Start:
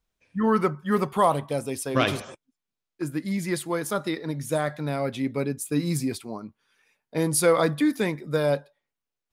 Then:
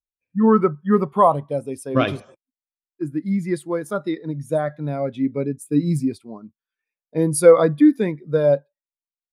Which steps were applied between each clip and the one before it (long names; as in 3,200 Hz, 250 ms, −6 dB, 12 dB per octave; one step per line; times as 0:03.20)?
every bin expanded away from the loudest bin 1.5 to 1
level +7.5 dB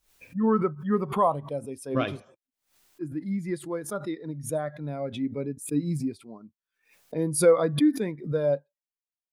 background raised ahead of every attack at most 130 dB per second
level −8 dB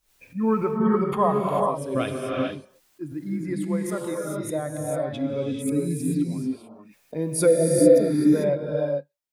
reverb whose tail is shaped and stops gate 470 ms rising, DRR −1 dB
healed spectral selection 0:07.49–0:08.27, 690–4,300 Hz after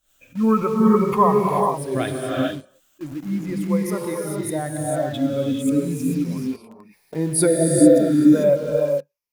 rippled gain that drifts along the octave scale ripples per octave 0.84, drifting −0.37 Hz, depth 10 dB
in parallel at −9.5 dB: bit reduction 6 bits